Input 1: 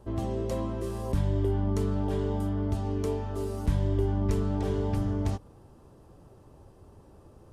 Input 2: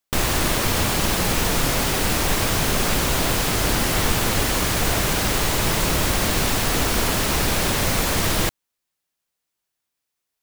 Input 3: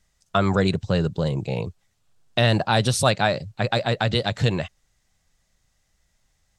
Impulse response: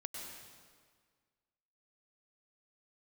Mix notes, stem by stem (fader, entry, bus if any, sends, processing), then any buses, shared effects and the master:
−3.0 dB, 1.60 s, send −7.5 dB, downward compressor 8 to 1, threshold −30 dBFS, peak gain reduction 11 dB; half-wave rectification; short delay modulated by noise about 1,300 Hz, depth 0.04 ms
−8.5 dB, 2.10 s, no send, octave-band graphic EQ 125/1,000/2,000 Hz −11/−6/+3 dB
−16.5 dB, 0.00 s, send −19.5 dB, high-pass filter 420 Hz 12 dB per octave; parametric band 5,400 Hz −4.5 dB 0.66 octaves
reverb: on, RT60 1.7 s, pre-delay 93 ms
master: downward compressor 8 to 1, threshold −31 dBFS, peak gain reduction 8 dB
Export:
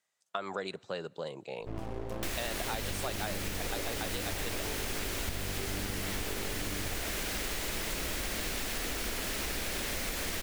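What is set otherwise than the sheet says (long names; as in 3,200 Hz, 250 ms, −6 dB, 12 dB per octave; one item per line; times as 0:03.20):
stem 1: missing downward compressor 8 to 1, threshold −30 dBFS, peak gain reduction 11 dB
stem 3 −16.5 dB → −9.0 dB
reverb return −7.5 dB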